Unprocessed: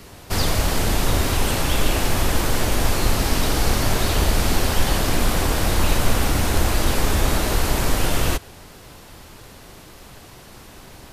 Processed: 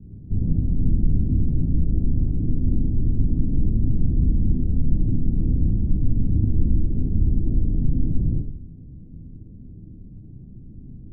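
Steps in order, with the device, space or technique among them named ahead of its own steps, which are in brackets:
club heard from the street (brickwall limiter −13.5 dBFS, peak gain reduction 9 dB; low-pass filter 240 Hz 24 dB per octave; convolution reverb RT60 0.50 s, pre-delay 31 ms, DRR −2 dB)
level +3 dB

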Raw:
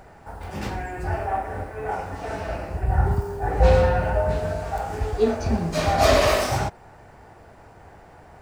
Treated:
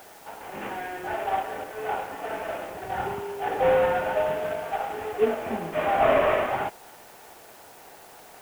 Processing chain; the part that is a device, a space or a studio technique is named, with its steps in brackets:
army field radio (band-pass filter 330–3,100 Hz; variable-slope delta modulation 16 kbit/s; white noise bed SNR 25 dB)

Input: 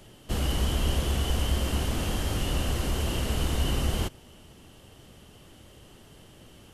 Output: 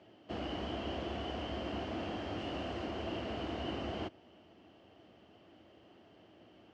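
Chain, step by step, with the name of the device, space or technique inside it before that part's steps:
high-pass filter 60 Hz
0:02.38–0:02.85: high-shelf EQ 11,000 Hz +7.5 dB
guitar cabinet (loudspeaker in its box 110–4,200 Hz, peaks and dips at 140 Hz −10 dB, 320 Hz +7 dB, 680 Hz +9 dB, 3,700 Hz −7 dB)
level −8.5 dB

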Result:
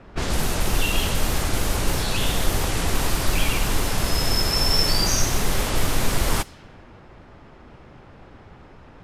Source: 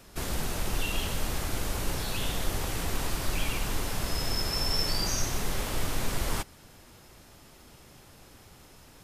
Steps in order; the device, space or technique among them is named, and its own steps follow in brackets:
cassette deck with a dynamic noise filter (white noise bed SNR 30 dB; low-pass that shuts in the quiet parts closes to 1,500 Hz, open at −25 dBFS)
level +8.5 dB

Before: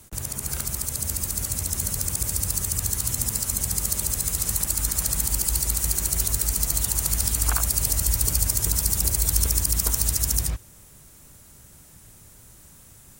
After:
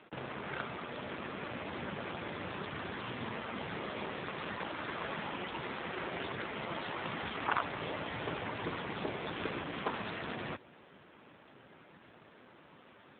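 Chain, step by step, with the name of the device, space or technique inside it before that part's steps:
telephone (band-pass filter 310–3,000 Hz; soft clipping −22 dBFS, distortion −20 dB; level +6 dB; AMR narrowband 7.4 kbit/s 8,000 Hz)

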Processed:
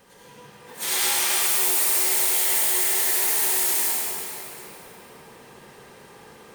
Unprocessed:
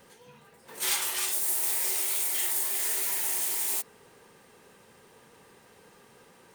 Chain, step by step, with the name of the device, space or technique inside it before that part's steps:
shimmer-style reverb (pitch-shifted copies added +12 semitones −8 dB; convolution reverb RT60 4.1 s, pre-delay 71 ms, DRR −8 dB)
0:00.72–0:02.46: high-pass filter 130 Hz 24 dB per octave

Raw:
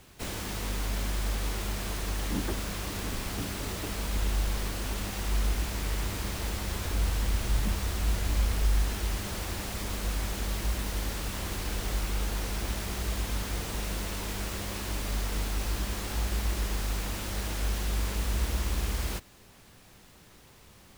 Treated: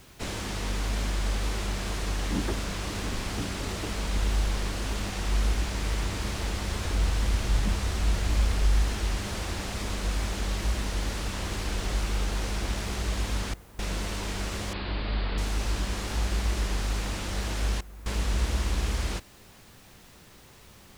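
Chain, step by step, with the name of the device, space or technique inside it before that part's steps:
worn cassette (low-pass filter 8,300 Hz 12 dB per octave; tape wow and flutter; tape dropouts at 0:13.54/0:17.81, 247 ms −18 dB; white noise bed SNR 32 dB)
0:14.73–0:15.38: Butterworth low-pass 4,700 Hz 96 dB per octave
level +2.5 dB

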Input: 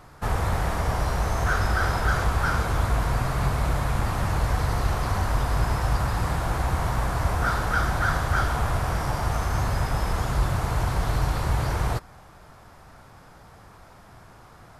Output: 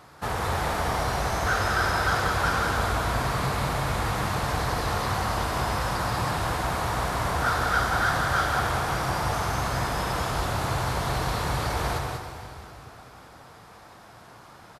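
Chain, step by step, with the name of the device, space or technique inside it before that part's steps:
PA in a hall (high-pass filter 180 Hz 6 dB per octave; parametric band 3,800 Hz +3.5 dB 0.83 octaves; single-tap delay 189 ms −4.5 dB; convolution reverb RT60 3.2 s, pre-delay 40 ms, DRR 6.5 dB)

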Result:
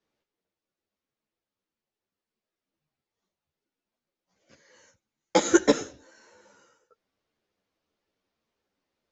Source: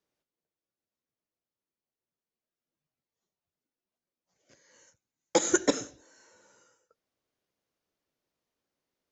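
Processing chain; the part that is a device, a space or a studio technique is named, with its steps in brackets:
string-machine ensemble chorus (string-ensemble chorus; low-pass filter 5,100 Hz 12 dB per octave)
level +8 dB

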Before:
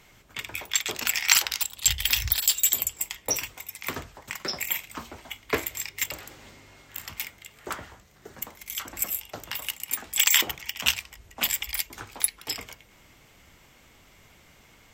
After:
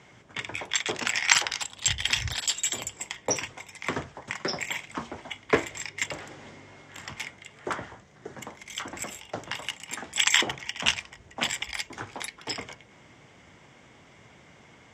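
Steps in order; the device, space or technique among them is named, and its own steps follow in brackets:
car door speaker (loudspeaker in its box 110–7,000 Hz, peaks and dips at 130 Hz +3 dB, 1,300 Hz −3 dB, 2,600 Hz −5 dB, 4,200 Hz −7 dB)
parametric band 6,100 Hz −5 dB 1.5 octaves
level +5 dB

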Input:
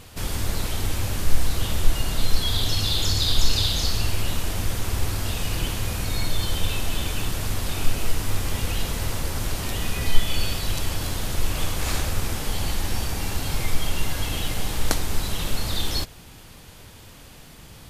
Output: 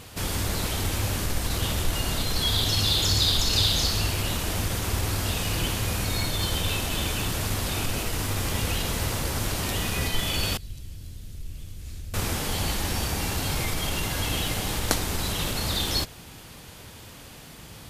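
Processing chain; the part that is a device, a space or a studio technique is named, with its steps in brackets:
parallel distortion (in parallel at −12 dB: hard clipping −18 dBFS, distortion −7 dB)
on the sum: high-pass filter 64 Hz 6 dB per octave
0:10.57–0:12.14: guitar amp tone stack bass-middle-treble 10-0-1

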